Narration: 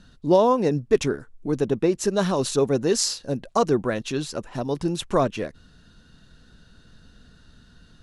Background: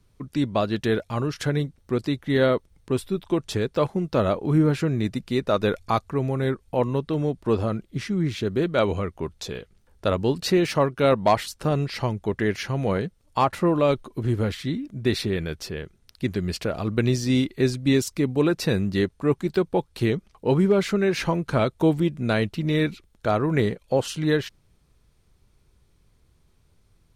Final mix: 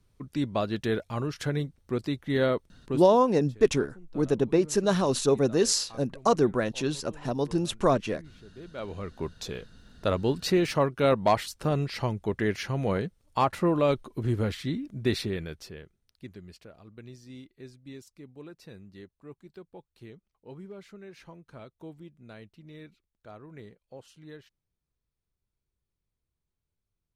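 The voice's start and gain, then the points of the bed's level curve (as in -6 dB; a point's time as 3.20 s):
2.70 s, -2.0 dB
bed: 2.90 s -5 dB
3.21 s -26 dB
8.49 s -26 dB
9.21 s -3.5 dB
15.12 s -3.5 dB
16.81 s -24.5 dB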